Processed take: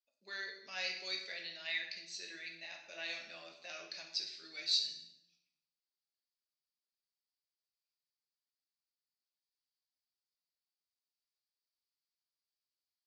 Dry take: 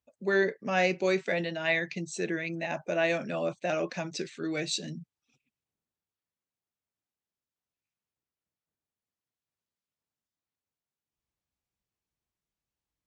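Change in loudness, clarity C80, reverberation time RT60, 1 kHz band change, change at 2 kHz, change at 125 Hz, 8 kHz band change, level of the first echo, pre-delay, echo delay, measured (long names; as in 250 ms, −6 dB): −9.5 dB, 9.0 dB, 0.85 s, −20.0 dB, −11.0 dB, below −30 dB, −8.0 dB, no echo audible, 7 ms, no echo audible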